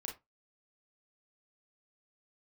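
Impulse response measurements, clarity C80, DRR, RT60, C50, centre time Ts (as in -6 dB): 19.5 dB, -0.5 dB, 0.20 s, 9.5 dB, 22 ms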